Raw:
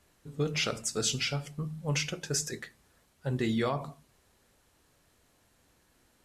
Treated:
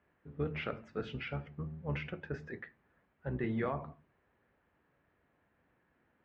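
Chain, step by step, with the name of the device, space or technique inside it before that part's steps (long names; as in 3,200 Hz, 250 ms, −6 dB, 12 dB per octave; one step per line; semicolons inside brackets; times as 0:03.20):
sub-octave bass pedal (sub-octave generator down 1 octave, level −4 dB; loudspeaker in its box 67–2,300 Hz, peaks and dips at 70 Hz −4 dB, 110 Hz −5 dB, 1,700 Hz +3 dB)
level −5 dB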